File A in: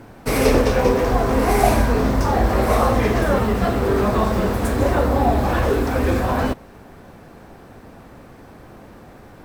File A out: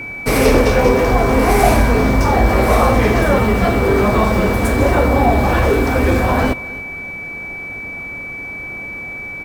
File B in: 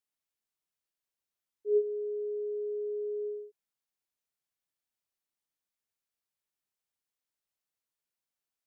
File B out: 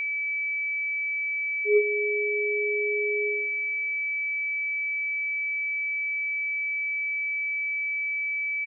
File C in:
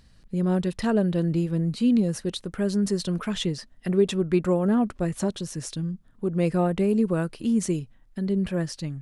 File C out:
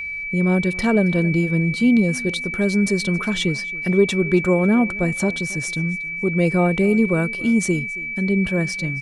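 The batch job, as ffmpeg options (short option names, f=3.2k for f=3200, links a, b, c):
-af "acontrast=56,aeval=exprs='val(0)+0.0562*sin(2*PI*2300*n/s)':c=same,aecho=1:1:274|548:0.0891|0.0276,volume=-1dB"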